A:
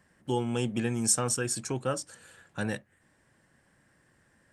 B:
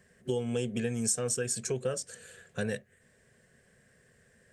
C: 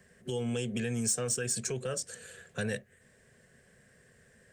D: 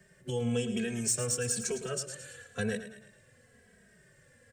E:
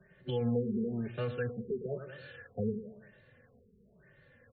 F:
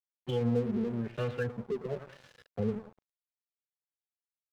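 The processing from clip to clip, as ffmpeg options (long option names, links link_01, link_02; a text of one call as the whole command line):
ffmpeg -i in.wav -af "superequalizer=6b=0.282:7b=2:9b=0.316:10b=0.501:15b=1.41,acompressor=threshold=-32dB:ratio=2.5,volume=2dB" out.wav
ffmpeg -i in.wav -filter_complex "[0:a]acrossover=split=110|1200|5600[link_01][link_02][link_03][link_04];[link_02]alimiter=level_in=6dB:limit=-24dB:level=0:latency=1,volume=-6dB[link_05];[link_04]asoftclip=type=tanh:threshold=-27.5dB[link_06];[link_01][link_05][link_03][link_06]amix=inputs=4:normalize=0,volume=2dB" out.wav
ffmpeg -i in.wav -filter_complex "[0:a]asplit=2[link_01][link_02];[link_02]aecho=0:1:109|218|327|436|545:0.282|0.141|0.0705|0.0352|0.0176[link_03];[link_01][link_03]amix=inputs=2:normalize=0,asplit=2[link_04][link_05];[link_05]adelay=2.8,afreqshift=-1[link_06];[link_04][link_06]amix=inputs=2:normalize=1,volume=3dB" out.wav
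ffmpeg -i in.wav -af "afftfilt=real='re*lt(b*sr/1024,460*pow(4500/460,0.5+0.5*sin(2*PI*1*pts/sr)))':imag='im*lt(b*sr/1024,460*pow(4500/460,0.5+0.5*sin(2*PI*1*pts/sr)))':win_size=1024:overlap=0.75" out.wav
ffmpeg -i in.wav -af "aeval=exprs='sgn(val(0))*max(abs(val(0))-0.00422,0)':channel_layout=same,volume=3dB" out.wav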